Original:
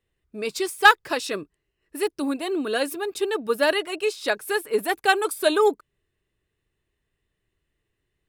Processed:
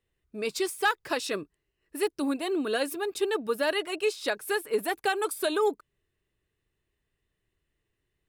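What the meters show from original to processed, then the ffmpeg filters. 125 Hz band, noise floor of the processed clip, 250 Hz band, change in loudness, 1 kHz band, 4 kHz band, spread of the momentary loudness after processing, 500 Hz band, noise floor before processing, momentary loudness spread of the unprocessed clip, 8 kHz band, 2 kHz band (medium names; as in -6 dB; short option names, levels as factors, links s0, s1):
no reading, -81 dBFS, -3.0 dB, -6.0 dB, -8.0 dB, -6.0 dB, 7 LU, -4.5 dB, -79 dBFS, 14 LU, -3.5 dB, -8.5 dB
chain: -af "alimiter=limit=0.2:level=0:latency=1:release=130,volume=0.75"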